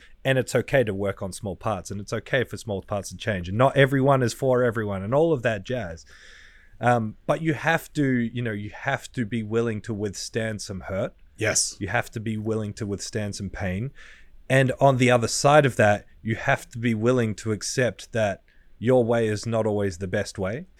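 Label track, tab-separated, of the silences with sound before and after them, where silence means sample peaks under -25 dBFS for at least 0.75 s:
5.910000	6.830000	silence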